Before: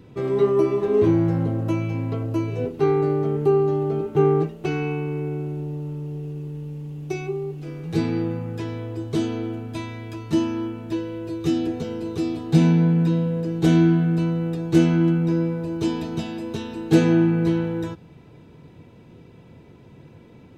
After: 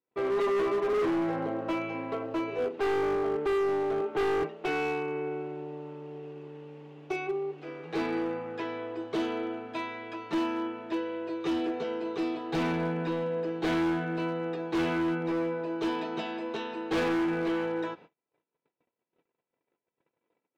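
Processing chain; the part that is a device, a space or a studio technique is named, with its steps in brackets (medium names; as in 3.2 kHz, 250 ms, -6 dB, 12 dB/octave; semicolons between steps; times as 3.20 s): 3.15–3.91 s: Chebyshev high-pass 180 Hz, order 2; walkie-talkie (band-pass 520–2700 Hz; hard clipper -28 dBFS, distortion -8 dB; gate -52 dBFS, range -38 dB); trim +3 dB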